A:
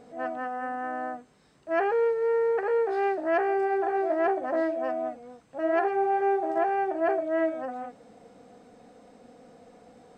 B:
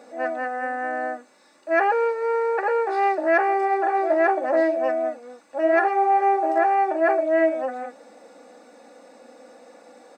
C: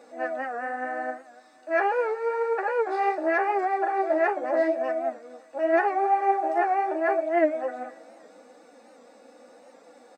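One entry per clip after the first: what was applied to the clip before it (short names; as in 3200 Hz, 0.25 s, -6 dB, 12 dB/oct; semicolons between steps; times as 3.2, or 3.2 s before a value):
HPF 420 Hz 12 dB/oct; notch 3100 Hz, Q 6.5; comb 3.5 ms, depth 63%; gain +7 dB
feedback echo 0.274 s, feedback 48%, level -21 dB; flange 0.81 Hz, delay 5.7 ms, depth 9.4 ms, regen +40%; record warp 78 rpm, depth 100 cents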